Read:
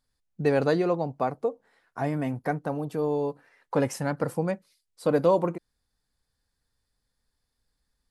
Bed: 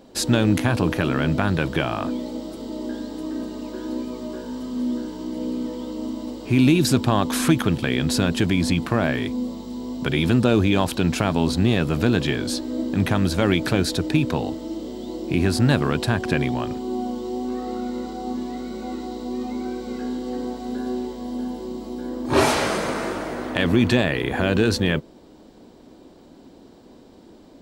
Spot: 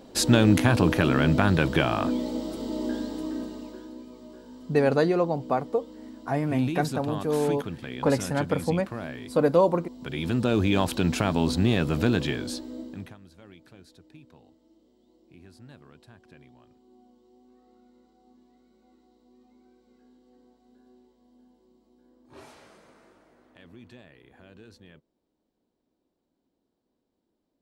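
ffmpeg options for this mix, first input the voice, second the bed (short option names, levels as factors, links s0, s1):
-filter_complex "[0:a]adelay=4300,volume=1.19[s0];[1:a]volume=3.55,afade=t=out:st=2.95:d=0.97:silence=0.188365,afade=t=in:st=9.98:d=0.79:silence=0.281838,afade=t=out:st=12.06:d=1.11:silence=0.0421697[s1];[s0][s1]amix=inputs=2:normalize=0"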